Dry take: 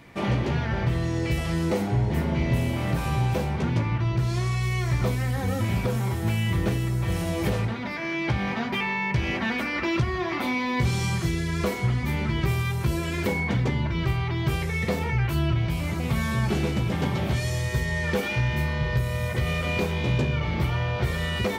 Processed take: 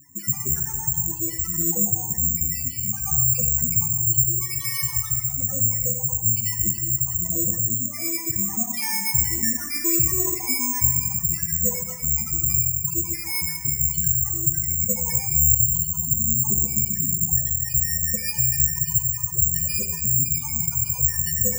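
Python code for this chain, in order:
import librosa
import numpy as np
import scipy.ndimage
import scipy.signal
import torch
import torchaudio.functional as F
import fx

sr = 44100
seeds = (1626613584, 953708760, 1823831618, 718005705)

y = fx.spec_dropout(x, sr, seeds[0], share_pct=41)
y = fx.high_shelf(y, sr, hz=2100.0, db=11.5, at=(3.03, 5.2))
y = fx.quant_companded(y, sr, bits=4)
y = fx.spec_topn(y, sr, count=4)
y = fx.echo_feedback(y, sr, ms=153, feedback_pct=60, wet_db=-18.0)
y = fx.rev_gated(y, sr, seeds[1], gate_ms=450, shape='falling', drr_db=4.0)
y = (np.kron(scipy.signal.resample_poly(y, 1, 6), np.eye(6)[0]) * 6)[:len(y)]
y = F.gain(torch.from_numpy(y), -2.5).numpy()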